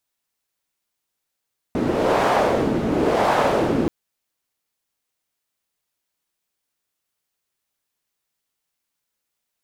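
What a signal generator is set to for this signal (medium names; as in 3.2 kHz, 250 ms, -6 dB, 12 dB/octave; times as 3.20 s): wind-like swept noise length 2.13 s, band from 280 Hz, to 740 Hz, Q 1.6, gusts 2, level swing 3 dB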